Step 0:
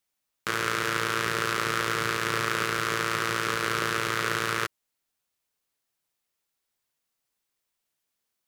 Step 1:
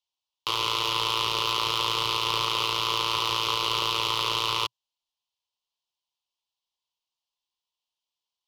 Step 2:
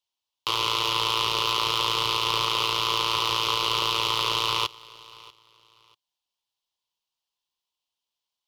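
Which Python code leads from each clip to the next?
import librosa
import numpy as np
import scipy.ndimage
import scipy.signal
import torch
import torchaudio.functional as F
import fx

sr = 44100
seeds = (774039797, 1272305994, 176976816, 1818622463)

y1 = fx.curve_eq(x, sr, hz=(120.0, 180.0, 350.0, 710.0, 1000.0, 1600.0, 3000.0, 5400.0, 11000.0), db=(0, -14, -4, 3, 13, -19, 14, 8, -9))
y1 = fx.leveller(y1, sr, passes=2)
y1 = y1 * librosa.db_to_amplitude(-8.0)
y2 = fx.echo_feedback(y1, sr, ms=640, feedback_pct=25, wet_db=-22.0)
y2 = y2 * librosa.db_to_amplitude(1.5)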